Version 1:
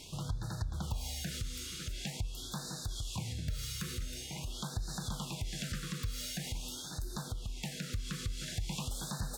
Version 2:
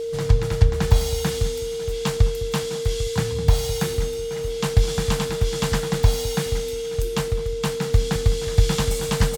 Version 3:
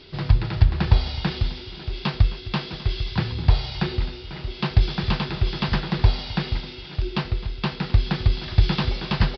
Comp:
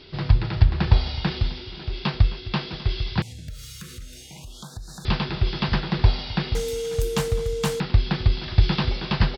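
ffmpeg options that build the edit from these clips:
-filter_complex "[2:a]asplit=3[a][b][c];[a]atrim=end=3.222[d];[0:a]atrim=start=3.218:end=5.052[e];[b]atrim=start=5.048:end=6.552[f];[1:a]atrim=start=6.548:end=7.802[g];[c]atrim=start=7.798[h];[d][e]acrossfade=d=0.004:c1=hsin:c2=hsin[i];[i][f]acrossfade=d=0.004:c1=hsin:c2=hsin[j];[j][g]acrossfade=d=0.004:c1=hsin:c2=hsin[k];[k][h]acrossfade=d=0.004:c1=hsin:c2=hsin"

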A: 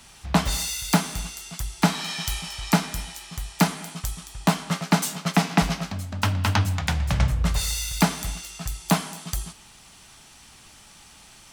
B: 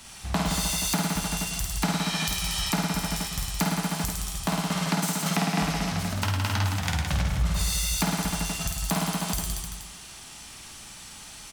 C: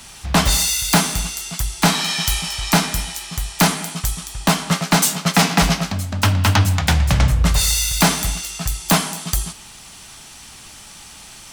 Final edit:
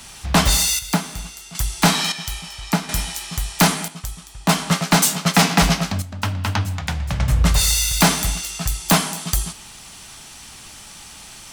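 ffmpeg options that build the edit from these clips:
-filter_complex "[0:a]asplit=4[a][b][c][d];[2:a]asplit=5[e][f][g][h][i];[e]atrim=end=0.792[j];[a]atrim=start=0.788:end=1.552[k];[f]atrim=start=1.548:end=2.122[l];[b]atrim=start=2.118:end=2.892[m];[g]atrim=start=2.888:end=3.882[n];[c]atrim=start=3.878:end=4.492[o];[h]atrim=start=4.488:end=6.022[p];[d]atrim=start=6.018:end=7.282[q];[i]atrim=start=7.278[r];[j][k]acrossfade=d=0.004:c1=hsin:c2=hsin[s];[s][l]acrossfade=d=0.004:c1=hsin:c2=hsin[t];[t][m]acrossfade=d=0.004:c1=hsin:c2=hsin[u];[u][n]acrossfade=d=0.004:c1=hsin:c2=hsin[v];[v][o]acrossfade=d=0.004:c1=hsin:c2=hsin[w];[w][p]acrossfade=d=0.004:c1=hsin:c2=hsin[x];[x][q]acrossfade=d=0.004:c1=hsin:c2=hsin[y];[y][r]acrossfade=d=0.004:c1=hsin:c2=hsin"

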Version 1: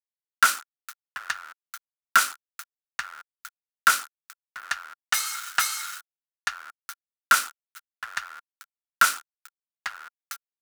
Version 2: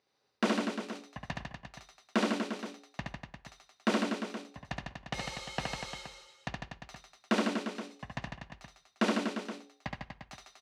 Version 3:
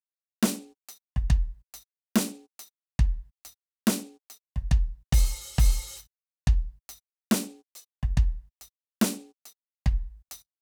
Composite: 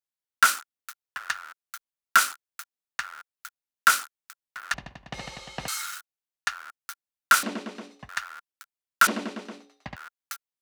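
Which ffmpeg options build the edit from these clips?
-filter_complex "[1:a]asplit=3[a][b][c];[0:a]asplit=4[d][e][f][g];[d]atrim=end=4.742[h];[a]atrim=start=4.738:end=5.682[i];[e]atrim=start=5.678:end=7.432[j];[b]atrim=start=7.428:end=8.092[k];[f]atrim=start=8.088:end=9.072[l];[c]atrim=start=9.068:end=9.962[m];[g]atrim=start=9.958[n];[h][i]acrossfade=d=0.004:c1=hsin:c2=hsin[o];[o][j]acrossfade=d=0.004:c1=hsin:c2=hsin[p];[p][k]acrossfade=d=0.004:c1=hsin:c2=hsin[q];[q][l]acrossfade=d=0.004:c1=hsin:c2=hsin[r];[r][m]acrossfade=d=0.004:c1=hsin:c2=hsin[s];[s][n]acrossfade=d=0.004:c1=hsin:c2=hsin"

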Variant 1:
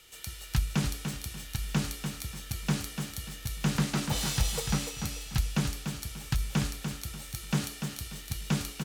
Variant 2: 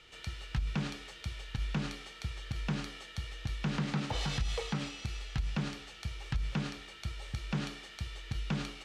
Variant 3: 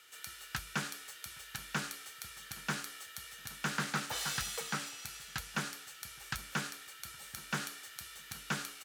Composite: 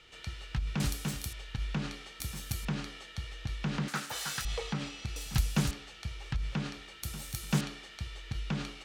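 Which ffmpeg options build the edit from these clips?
-filter_complex "[0:a]asplit=4[a][b][c][d];[1:a]asplit=6[e][f][g][h][i][j];[e]atrim=end=0.802[k];[a]atrim=start=0.798:end=1.332[l];[f]atrim=start=1.328:end=2.202[m];[b]atrim=start=2.198:end=2.652[n];[g]atrim=start=2.648:end=3.882[o];[2:a]atrim=start=3.878:end=4.452[p];[h]atrim=start=4.448:end=5.162[q];[c]atrim=start=5.158:end=5.712[r];[i]atrim=start=5.708:end=7.032[s];[d]atrim=start=7.028:end=7.612[t];[j]atrim=start=7.608[u];[k][l]acrossfade=d=0.004:c1=hsin:c2=hsin[v];[v][m]acrossfade=d=0.004:c1=hsin:c2=hsin[w];[w][n]acrossfade=d=0.004:c1=hsin:c2=hsin[x];[x][o]acrossfade=d=0.004:c1=hsin:c2=hsin[y];[y][p]acrossfade=d=0.004:c1=hsin:c2=hsin[z];[z][q]acrossfade=d=0.004:c1=hsin:c2=hsin[aa];[aa][r]acrossfade=d=0.004:c1=hsin:c2=hsin[ab];[ab][s]acrossfade=d=0.004:c1=hsin:c2=hsin[ac];[ac][t]acrossfade=d=0.004:c1=hsin:c2=hsin[ad];[ad][u]acrossfade=d=0.004:c1=hsin:c2=hsin"

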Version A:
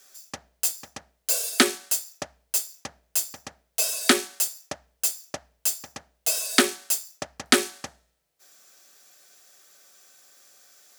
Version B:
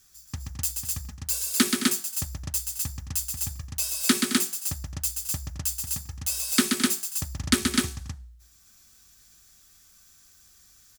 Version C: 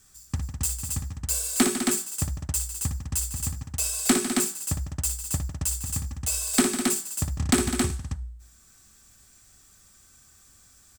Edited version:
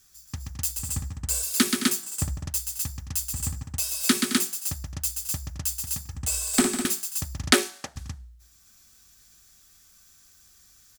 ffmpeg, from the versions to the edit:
-filter_complex "[2:a]asplit=4[a][b][c][d];[1:a]asplit=6[e][f][g][h][i][j];[e]atrim=end=0.792[k];[a]atrim=start=0.788:end=1.432[l];[f]atrim=start=1.428:end=2.032[m];[b]atrim=start=2.028:end=2.462[n];[g]atrim=start=2.458:end=3.332[o];[c]atrim=start=3.328:end=3.792[p];[h]atrim=start=3.788:end=6.152[q];[d]atrim=start=6.148:end=6.852[r];[i]atrim=start=6.848:end=7.522[s];[0:a]atrim=start=7.518:end=7.962[t];[j]atrim=start=7.958[u];[k][l]acrossfade=d=0.004:c1=hsin:c2=hsin[v];[v][m]acrossfade=d=0.004:c1=hsin:c2=hsin[w];[w][n]acrossfade=d=0.004:c1=hsin:c2=hsin[x];[x][o]acrossfade=d=0.004:c1=hsin:c2=hsin[y];[y][p]acrossfade=d=0.004:c1=hsin:c2=hsin[z];[z][q]acrossfade=d=0.004:c1=hsin:c2=hsin[aa];[aa][r]acrossfade=d=0.004:c1=hsin:c2=hsin[ab];[ab][s]acrossfade=d=0.004:c1=hsin:c2=hsin[ac];[ac][t]acrossfade=d=0.004:c1=hsin:c2=hsin[ad];[ad][u]acrossfade=d=0.004:c1=hsin:c2=hsin"

